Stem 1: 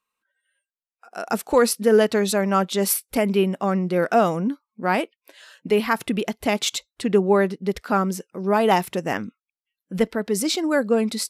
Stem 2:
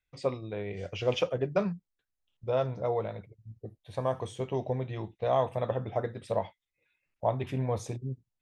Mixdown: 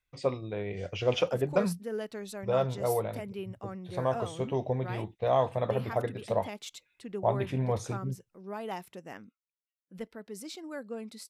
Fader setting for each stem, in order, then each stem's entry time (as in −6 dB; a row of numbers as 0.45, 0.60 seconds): −19.5, +1.0 decibels; 0.00, 0.00 seconds